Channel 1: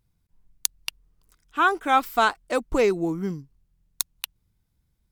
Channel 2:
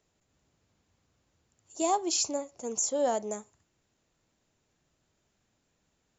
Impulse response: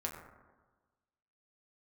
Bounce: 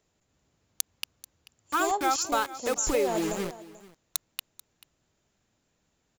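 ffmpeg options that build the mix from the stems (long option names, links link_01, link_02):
-filter_complex "[0:a]bandreject=frequency=640:width=12,aecho=1:1:2.4:0.39,acrusher=bits=4:mix=0:aa=0.000001,adelay=150,volume=-4.5dB,asplit=2[link_01][link_02];[link_02]volume=-20dB[link_03];[1:a]volume=1dB,asplit=2[link_04][link_05];[link_05]volume=-18.5dB[link_06];[link_03][link_06]amix=inputs=2:normalize=0,aecho=0:1:437:1[link_07];[link_01][link_04][link_07]amix=inputs=3:normalize=0,acompressor=threshold=-22dB:ratio=4"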